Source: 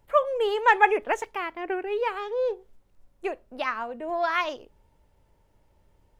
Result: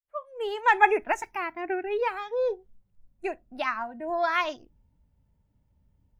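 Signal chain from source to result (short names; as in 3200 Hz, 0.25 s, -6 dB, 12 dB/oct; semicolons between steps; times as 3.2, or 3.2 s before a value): opening faded in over 0.85 s; spectral noise reduction 14 dB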